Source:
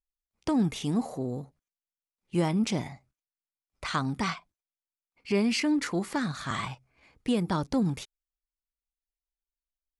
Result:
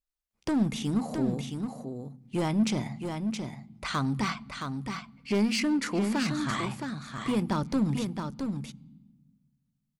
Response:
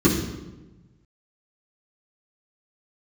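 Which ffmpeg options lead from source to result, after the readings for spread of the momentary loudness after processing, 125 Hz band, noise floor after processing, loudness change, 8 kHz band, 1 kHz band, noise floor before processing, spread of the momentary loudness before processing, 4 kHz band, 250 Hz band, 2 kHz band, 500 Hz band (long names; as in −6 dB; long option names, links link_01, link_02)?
11 LU, +1.5 dB, −80 dBFS, −0.5 dB, +1.0 dB, +0.5 dB, below −85 dBFS, 13 LU, +0.5 dB, +1.5 dB, +0.5 dB, −1.0 dB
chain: -filter_complex "[0:a]asoftclip=type=hard:threshold=-23dB,aecho=1:1:669:0.501,asplit=2[link_01][link_02];[1:a]atrim=start_sample=2205,asetrate=29988,aresample=44100[link_03];[link_02][link_03]afir=irnorm=-1:irlink=0,volume=-41.5dB[link_04];[link_01][link_04]amix=inputs=2:normalize=0"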